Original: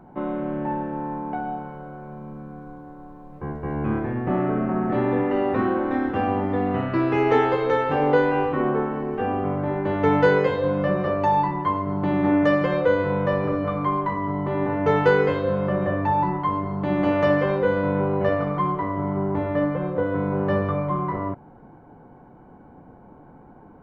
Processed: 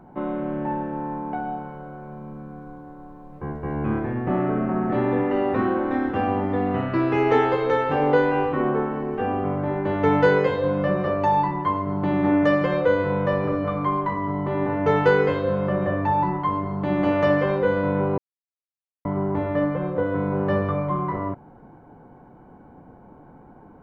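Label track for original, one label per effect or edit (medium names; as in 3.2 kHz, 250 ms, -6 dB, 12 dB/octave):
18.180000	19.050000	mute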